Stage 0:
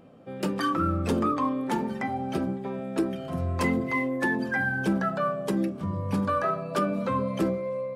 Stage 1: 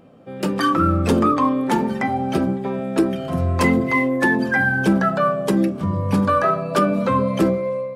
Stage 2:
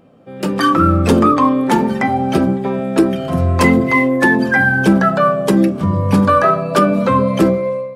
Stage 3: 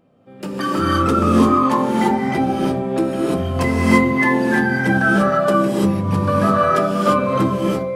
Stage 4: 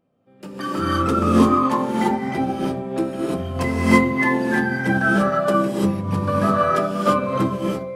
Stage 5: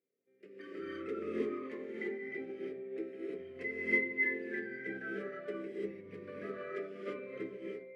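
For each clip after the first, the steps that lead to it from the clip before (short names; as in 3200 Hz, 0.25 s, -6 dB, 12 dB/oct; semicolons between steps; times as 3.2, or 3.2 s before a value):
AGC gain up to 5 dB; gain +3.5 dB
AGC gain up to 9 dB
non-linear reverb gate 0.37 s rising, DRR -5 dB; gain -9.5 dB
upward expander 1.5:1, over -32 dBFS
double band-pass 920 Hz, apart 2.3 oct; gain -8 dB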